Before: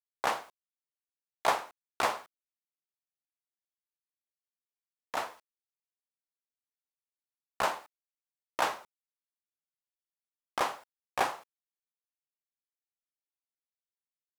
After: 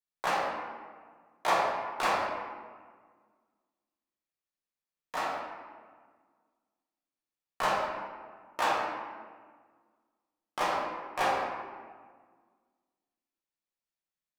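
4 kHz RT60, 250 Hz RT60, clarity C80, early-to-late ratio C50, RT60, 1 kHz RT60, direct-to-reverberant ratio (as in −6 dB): 0.95 s, 2.0 s, 2.0 dB, 0.0 dB, 1.6 s, 1.6 s, −6.0 dB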